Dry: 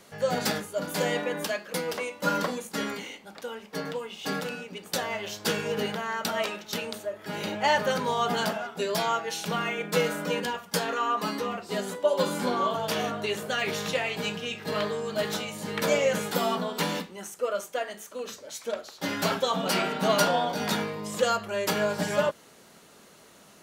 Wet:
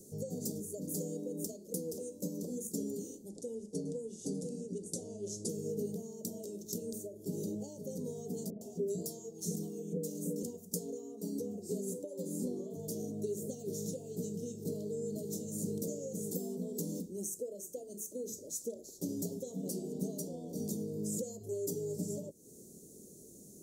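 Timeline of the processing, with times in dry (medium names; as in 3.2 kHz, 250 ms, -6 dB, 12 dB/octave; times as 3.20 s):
3.29–5.49 s: steep low-pass 11 kHz 72 dB/octave
8.50–10.43 s: bands offset in time lows, highs 110 ms, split 680 Hz
21.40–21.96 s: comb 7.2 ms, depth 85%
whole clip: compression 6:1, threshold -34 dBFS; Chebyshev band-stop 410–6700 Hz, order 3; trim +3.5 dB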